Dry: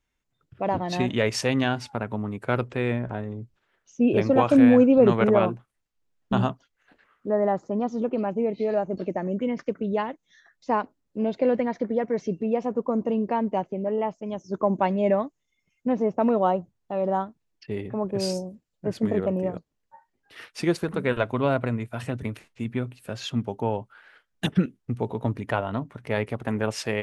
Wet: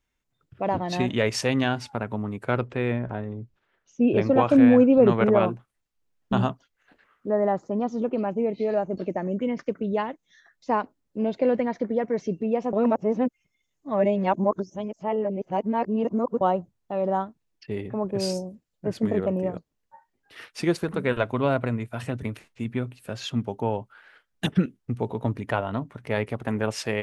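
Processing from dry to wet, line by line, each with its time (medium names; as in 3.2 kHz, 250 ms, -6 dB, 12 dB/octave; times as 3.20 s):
2.51–5.40 s: treble shelf 6.5 kHz -10 dB
12.73–16.41 s: reverse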